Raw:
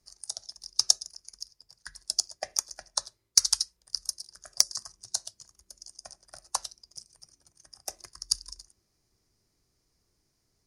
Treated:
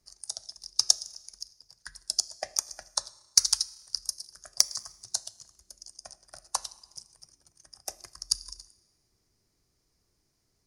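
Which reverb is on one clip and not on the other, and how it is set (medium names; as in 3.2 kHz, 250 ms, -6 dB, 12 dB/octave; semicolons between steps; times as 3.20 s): Schroeder reverb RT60 1.2 s, combs from 26 ms, DRR 19.5 dB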